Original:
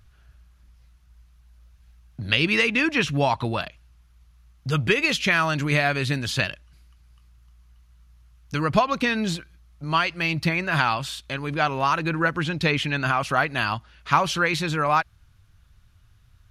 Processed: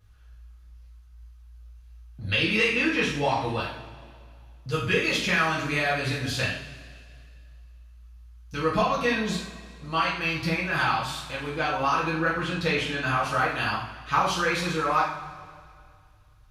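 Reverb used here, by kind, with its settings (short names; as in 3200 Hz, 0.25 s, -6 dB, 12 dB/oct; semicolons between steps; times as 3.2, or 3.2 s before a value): two-slope reverb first 0.53 s, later 2.3 s, from -17 dB, DRR -7 dB; gain -10 dB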